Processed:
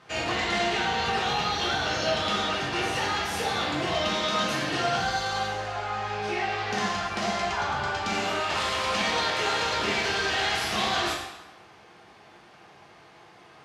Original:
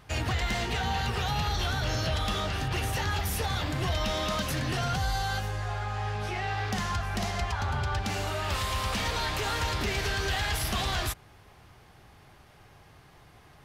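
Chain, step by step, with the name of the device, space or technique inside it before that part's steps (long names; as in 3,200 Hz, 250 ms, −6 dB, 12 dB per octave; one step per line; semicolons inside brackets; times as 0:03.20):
supermarket ceiling speaker (band-pass filter 210–6,200 Hz; convolution reverb RT60 1.0 s, pre-delay 3 ms, DRR −4.5 dB)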